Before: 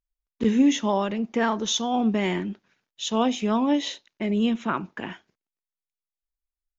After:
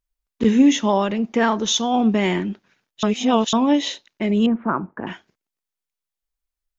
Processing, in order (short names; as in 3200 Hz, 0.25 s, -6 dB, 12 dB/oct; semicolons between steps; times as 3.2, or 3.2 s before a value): 3.03–3.53 reverse; 4.46–5.07 inverse Chebyshev low-pass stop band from 6200 Hz, stop band 70 dB; gain +5 dB